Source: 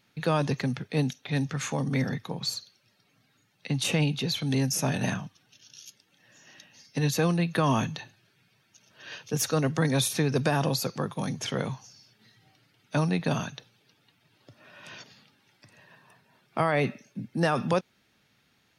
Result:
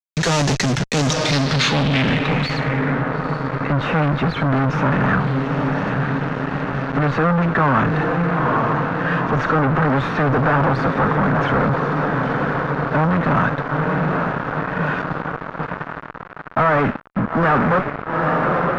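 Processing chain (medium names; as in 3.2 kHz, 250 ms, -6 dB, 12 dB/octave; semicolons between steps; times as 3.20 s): median filter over 5 samples; Chebyshev shaper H 2 -22 dB, 6 -22 dB, 7 -45 dB, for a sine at -12 dBFS; echo that smears into a reverb 899 ms, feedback 66%, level -13 dB; fuzz box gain 44 dB, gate -44 dBFS; low-pass sweep 6.5 kHz -> 1.4 kHz, 1.05–3.07 s; trim -3 dB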